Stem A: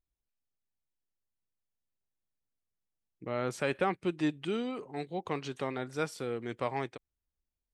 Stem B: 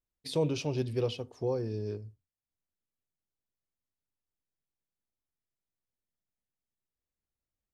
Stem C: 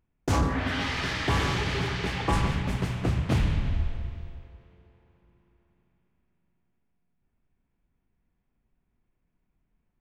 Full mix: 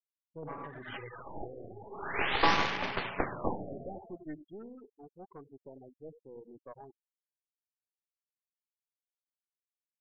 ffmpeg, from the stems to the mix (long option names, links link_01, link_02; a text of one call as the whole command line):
ffmpeg -i stem1.wav -i stem2.wav -i stem3.wav -filter_complex "[0:a]dynaudnorm=framelen=120:gausssize=17:maxgain=6dB,acrusher=bits=6:mix=0:aa=0.000001,adelay=50,volume=-18dB,asplit=2[link_01][link_02];[link_02]volume=-11dB[link_03];[1:a]aeval=exprs='0.133*(cos(1*acos(clip(val(0)/0.133,-1,1)))-cos(1*PI/2))+0.00531*(cos(2*acos(clip(val(0)/0.133,-1,1)))-cos(2*PI/2))':channel_layout=same,volume=-17dB,asplit=3[link_04][link_05][link_06];[link_05]volume=-6.5dB[link_07];[2:a]highpass=480,adelay=150,volume=3dB[link_08];[link_06]apad=whole_len=447672[link_09];[link_08][link_09]sidechaincompress=threshold=-57dB:ratio=16:attack=7.4:release=328[link_10];[link_03][link_07]amix=inputs=2:normalize=0,aecho=0:1:91:1[link_11];[link_01][link_04][link_10][link_11]amix=inputs=4:normalize=0,afftfilt=real='re*gte(hypot(re,im),0.0158)':imag='im*gte(hypot(re,im),0.0158)':win_size=1024:overlap=0.75,aeval=exprs='0.2*(cos(1*acos(clip(val(0)/0.2,-1,1)))-cos(1*PI/2))+0.0447*(cos(6*acos(clip(val(0)/0.2,-1,1)))-cos(6*PI/2))+0.00158*(cos(7*acos(clip(val(0)/0.2,-1,1)))-cos(7*PI/2))':channel_layout=same,afftfilt=real='re*lt(b*sr/1024,740*pow(7000/740,0.5+0.5*sin(2*PI*0.46*pts/sr)))':imag='im*lt(b*sr/1024,740*pow(7000/740,0.5+0.5*sin(2*PI*0.46*pts/sr)))':win_size=1024:overlap=0.75" out.wav